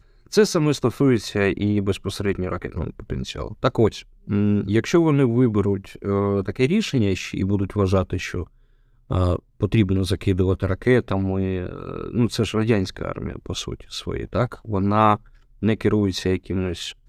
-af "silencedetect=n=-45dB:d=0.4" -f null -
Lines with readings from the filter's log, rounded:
silence_start: 8.47
silence_end: 9.10 | silence_duration: 0.62